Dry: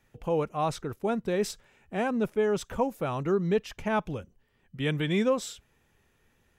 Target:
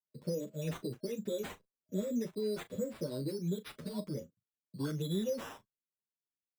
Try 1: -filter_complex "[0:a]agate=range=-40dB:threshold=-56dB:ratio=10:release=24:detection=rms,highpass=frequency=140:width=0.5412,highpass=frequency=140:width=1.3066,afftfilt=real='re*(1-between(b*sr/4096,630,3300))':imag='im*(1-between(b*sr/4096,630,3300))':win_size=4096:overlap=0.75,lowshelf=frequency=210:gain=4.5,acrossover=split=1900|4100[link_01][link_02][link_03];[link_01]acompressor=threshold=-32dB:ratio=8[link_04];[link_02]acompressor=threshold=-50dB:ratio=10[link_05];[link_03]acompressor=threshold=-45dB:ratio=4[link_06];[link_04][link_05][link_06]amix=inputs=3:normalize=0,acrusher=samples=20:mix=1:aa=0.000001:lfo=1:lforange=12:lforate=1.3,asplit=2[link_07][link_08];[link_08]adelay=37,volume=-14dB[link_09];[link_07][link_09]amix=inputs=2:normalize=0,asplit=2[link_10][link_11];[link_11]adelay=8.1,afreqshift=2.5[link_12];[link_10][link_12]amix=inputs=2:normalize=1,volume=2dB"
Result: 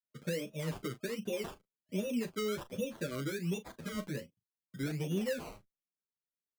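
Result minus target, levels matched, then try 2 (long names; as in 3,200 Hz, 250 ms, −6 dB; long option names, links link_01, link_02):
sample-and-hold swept by an LFO: distortion +6 dB
-filter_complex "[0:a]agate=range=-40dB:threshold=-56dB:ratio=10:release=24:detection=rms,highpass=frequency=140:width=0.5412,highpass=frequency=140:width=1.3066,afftfilt=real='re*(1-between(b*sr/4096,630,3300))':imag='im*(1-between(b*sr/4096,630,3300))':win_size=4096:overlap=0.75,lowshelf=frequency=210:gain=4.5,acrossover=split=1900|4100[link_01][link_02][link_03];[link_01]acompressor=threshold=-32dB:ratio=8[link_04];[link_02]acompressor=threshold=-50dB:ratio=10[link_05];[link_03]acompressor=threshold=-45dB:ratio=4[link_06];[link_04][link_05][link_06]amix=inputs=3:normalize=0,acrusher=samples=8:mix=1:aa=0.000001:lfo=1:lforange=4.8:lforate=1.3,asplit=2[link_07][link_08];[link_08]adelay=37,volume=-14dB[link_09];[link_07][link_09]amix=inputs=2:normalize=0,asplit=2[link_10][link_11];[link_11]adelay=8.1,afreqshift=2.5[link_12];[link_10][link_12]amix=inputs=2:normalize=1,volume=2dB"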